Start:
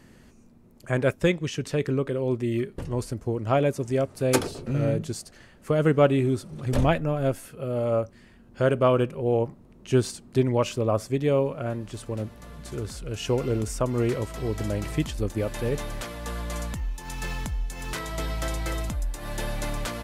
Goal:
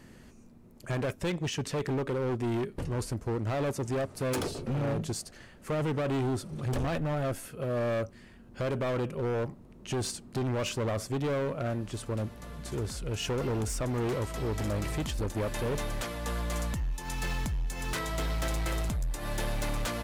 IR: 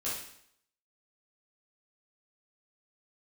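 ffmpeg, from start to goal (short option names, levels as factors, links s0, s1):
-af "alimiter=limit=0.133:level=0:latency=1:release=36,asoftclip=type=hard:threshold=0.0422"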